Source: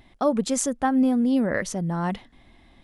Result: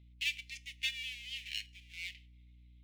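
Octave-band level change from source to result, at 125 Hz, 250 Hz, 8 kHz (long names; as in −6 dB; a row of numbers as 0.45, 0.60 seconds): −25.5 dB, below −40 dB, −20.0 dB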